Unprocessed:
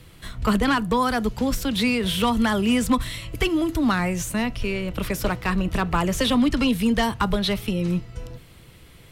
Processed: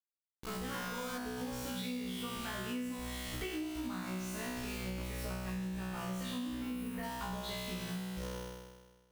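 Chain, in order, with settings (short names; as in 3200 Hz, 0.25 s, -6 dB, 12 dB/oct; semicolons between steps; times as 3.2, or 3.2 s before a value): opening faded in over 1.32 s; bit-crush 5-bit; 6.48–7.03 band shelf 4800 Hz -11 dB; resonator 62 Hz, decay 1.4 s, harmonics all, mix 100%; 0.7–1.18 flutter echo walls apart 6.5 m, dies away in 1.4 s; compressor 12:1, threshold -45 dBFS, peak gain reduction 18.5 dB; gain +8.5 dB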